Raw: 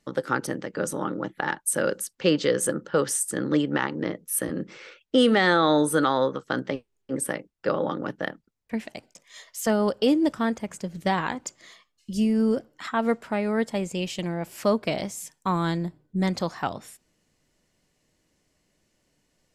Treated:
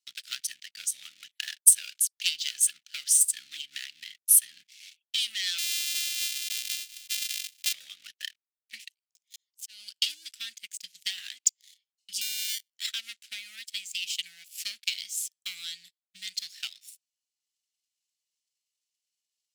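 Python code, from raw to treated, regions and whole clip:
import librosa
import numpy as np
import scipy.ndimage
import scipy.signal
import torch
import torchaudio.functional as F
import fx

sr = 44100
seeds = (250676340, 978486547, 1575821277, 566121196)

y = fx.chain(x, sr, fx.sample_sort(block=128),
    fx.sustainer(db_per_s=30.0), at=(5.58, 7.73))
y = fx.chain(y, sr, fx.high_shelf(hz=2800.0, db=3.0),
    fx.auto_swell(attack_ms=623.0), at=(8.88, 9.94))
y = fx.chain(y, sr, fx.sample_hold(seeds[0], rate_hz=1300.0, jitter_pct=0),
    fx.highpass(hz=86.0, slope=6), at=(12.21, 12.7))
y = fx.leveller(y, sr, passes=3)
y = fx.transient(y, sr, attack_db=8, sustain_db=-4)
y = scipy.signal.sosfilt(scipy.signal.cheby2(4, 50, 1100.0, 'highpass', fs=sr, output='sos'), y)
y = y * 10.0 ** (-5.0 / 20.0)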